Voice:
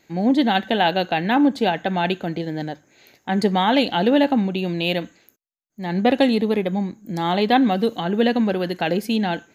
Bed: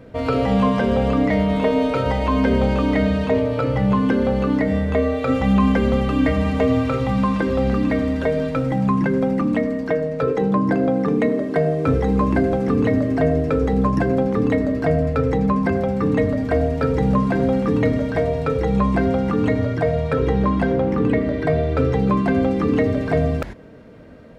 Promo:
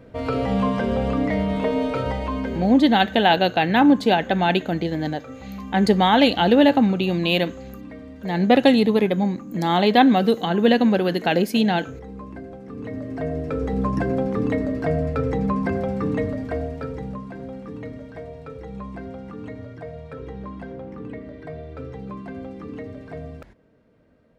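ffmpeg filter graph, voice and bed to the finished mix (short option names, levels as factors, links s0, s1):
-filter_complex "[0:a]adelay=2450,volume=1.26[s0];[1:a]volume=3.55,afade=t=out:st=2.01:d=0.78:silence=0.177828,afade=t=in:st=12.68:d=1.3:silence=0.177828,afade=t=out:st=15.94:d=1.27:silence=0.237137[s1];[s0][s1]amix=inputs=2:normalize=0"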